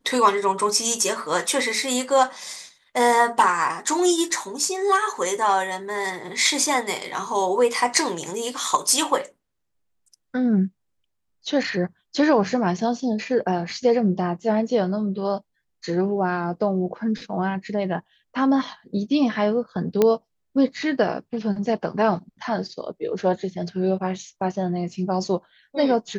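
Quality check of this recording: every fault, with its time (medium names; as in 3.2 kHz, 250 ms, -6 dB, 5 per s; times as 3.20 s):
20.02 s: pop -6 dBFS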